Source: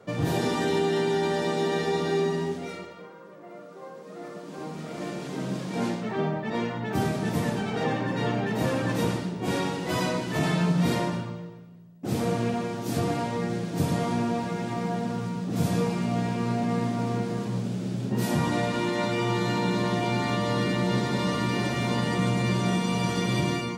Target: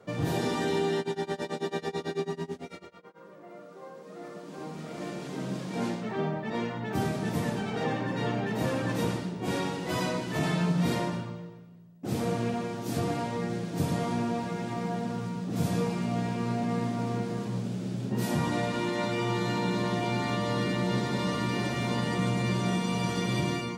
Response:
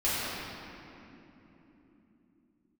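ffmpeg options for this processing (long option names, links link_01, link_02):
-filter_complex "[0:a]asplit=3[link_01][link_02][link_03];[link_01]afade=type=out:start_time=0.96:duration=0.02[link_04];[link_02]tremolo=f=9.1:d=0.95,afade=type=in:start_time=0.96:duration=0.02,afade=type=out:start_time=3.19:duration=0.02[link_05];[link_03]afade=type=in:start_time=3.19:duration=0.02[link_06];[link_04][link_05][link_06]amix=inputs=3:normalize=0,volume=-3dB"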